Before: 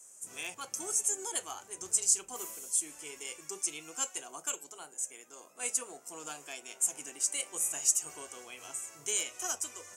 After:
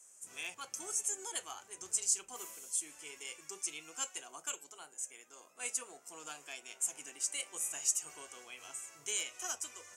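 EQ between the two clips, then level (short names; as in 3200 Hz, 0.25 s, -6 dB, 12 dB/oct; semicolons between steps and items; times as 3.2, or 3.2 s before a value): bell 2500 Hz +6 dB 2.9 oct; -7.5 dB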